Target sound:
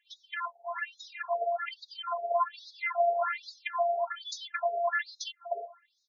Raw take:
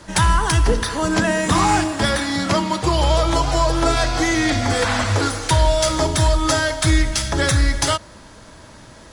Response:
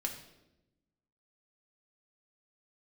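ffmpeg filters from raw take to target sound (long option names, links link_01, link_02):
-filter_complex "[0:a]afftdn=noise_reduction=21:noise_floor=-24,highshelf=frequency=5100:gain=-11.5,bandreject=frequency=50:width_type=h:width=6,bandreject=frequency=100:width_type=h:width=6,bandreject=frequency=150:width_type=h:width=6,acrossover=split=100|2000[link_01][link_02][link_03];[link_01]acompressor=threshold=-24dB:ratio=4[link_04];[link_02]acompressor=threshold=-26dB:ratio=4[link_05];[link_03]acompressor=threshold=-43dB:ratio=4[link_06];[link_04][link_05][link_06]amix=inputs=3:normalize=0,atempo=1.5,afftfilt=real='hypot(re,im)*cos(PI*b)':imag='0':win_size=512:overlap=0.75,acrossover=split=190|830[link_07][link_08][link_09];[link_07]adelay=600[link_10];[link_08]adelay=640[link_11];[link_10][link_11][link_09]amix=inputs=3:normalize=0,afftfilt=real='re*between(b*sr/1024,580*pow(5000/580,0.5+0.5*sin(2*PI*1.2*pts/sr))/1.41,580*pow(5000/580,0.5+0.5*sin(2*PI*1.2*pts/sr))*1.41)':imag='im*between(b*sr/1024,580*pow(5000/580,0.5+0.5*sin(2*PI*1.2*pts/sr))/1.41,580*pow(5000/580,0.5+0.5*sin(2*PI*1.2*pts/sr))*1.41)':win_size=1024:overlap=0.75,volume=8dB"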